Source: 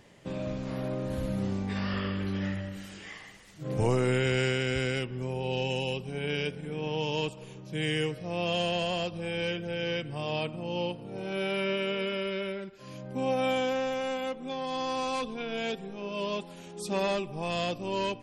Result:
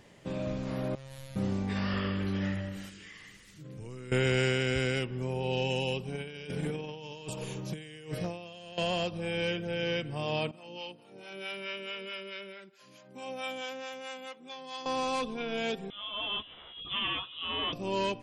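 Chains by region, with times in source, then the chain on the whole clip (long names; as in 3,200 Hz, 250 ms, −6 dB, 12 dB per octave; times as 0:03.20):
0:00.95–0:01.36: guitar amp tone stack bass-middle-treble 10-0-10 + double-tracking delay 15 ms −4 dB + phases set to zero 134 Hz
0:02.89–0:04.12: parametric band 730 Hz −13.5 dB 0.97 octaves + downward compressor 3 to 1, threshold −46 dBFS
0:06.15–0:08.78: high-shelf EQ 5,800 Hz +6 dB + compressor whose output falls as the input rises −37 dBFS, ratio −0.5 + hard clipping −27 dBFS
0:10.51–0:14.86: high-pass filter 300 Hz + parametric band 470 Hz −8 dB 2.7 octaves + two-band tremolo in antiphase 4.6 Hz, crossover 540 Hz
0:15.90–0:17.73: high-pass filter 760 Hz 6 dB per octave + voice inversion scrambler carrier 3,700 Hz + double-tracking delay 14 ms −5 dB
whole clip: no processing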